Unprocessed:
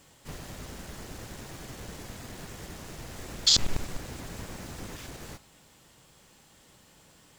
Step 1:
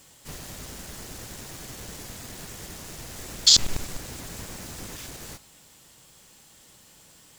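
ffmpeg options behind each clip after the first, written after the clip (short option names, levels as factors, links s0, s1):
-af "highshelf=f=3800:g=9"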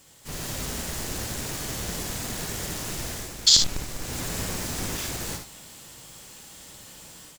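-filter_complex "[0:a]dynaudnorm=f=220:g=3:m=2.82,asplit=2[s0][s1];[s1]aecho=0:1:57|74:0.473|0.282[s2];[s0][s2]amix=inputs=2:normalize=0,volume=0.794"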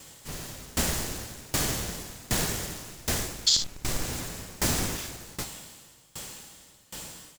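-af "aeval=exprs='val(0)*pow(10,-25*if(lt(mod(1.3*n/s,1),2*abs(1.3)/1000),1-mod(1.3*n/s,1)/(2*abs(1.3)/1000),(mod(1.3*n/s,1)-2*abs(1.3)/1000)/(1-2*abs(1.3)/1000))/20)':c=same,volume=2.66"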